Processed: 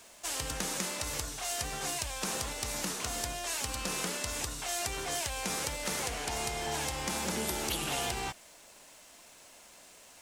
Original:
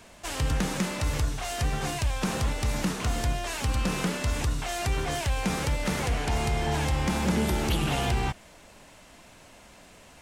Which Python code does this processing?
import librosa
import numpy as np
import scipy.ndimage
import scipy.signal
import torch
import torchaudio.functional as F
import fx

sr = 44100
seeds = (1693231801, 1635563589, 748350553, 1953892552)

p1 = fx.bass_treble(x, sr, bass_db=-11, treble_db=9)
p2 = fx.quant_dither(p1, sr, seeds[0], bits=8, dither='none')
p3 = p1 + F.gain(torch.from_numpy(p2), -7.0).numpy()
y = F.gain(torch.from_numpy(p3), -8.5).numpy()